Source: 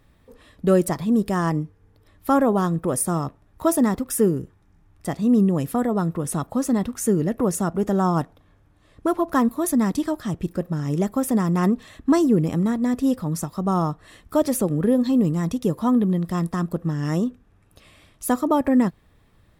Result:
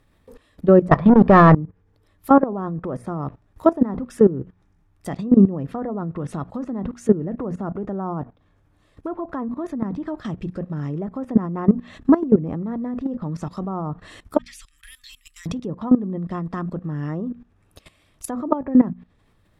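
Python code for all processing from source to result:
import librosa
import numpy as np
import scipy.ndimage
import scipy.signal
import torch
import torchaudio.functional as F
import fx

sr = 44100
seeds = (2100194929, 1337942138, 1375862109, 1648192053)

y = fx.chain(x, sr, fx.peak_eq(hz=2400.0, db=7.0, octaves=2.9),
    fx.comb(ms=1.7, depth=0.37),
    fx.leveller(passes=3), at=(0.91, 1.55))
y = fx.chain(y, sr, fx.cheby2_bandstop(low_hz=120.0, high_hz=720.0, order=4, stop_db=60),
    fx.high_shelf(hz=4700.0, db=-5.0), at=(14.38, 15.46))
y = fx.env_lowpass_down(y, sr, base_hz=1200.0, full_db=-18.0)
y = fx.hum_notches(y, sr, base_hz=60, count=4)
y = fx.level_steps(y, sr, step_db=17)
y = F.gain(torch.from_numpy(y), 7.5).numpy()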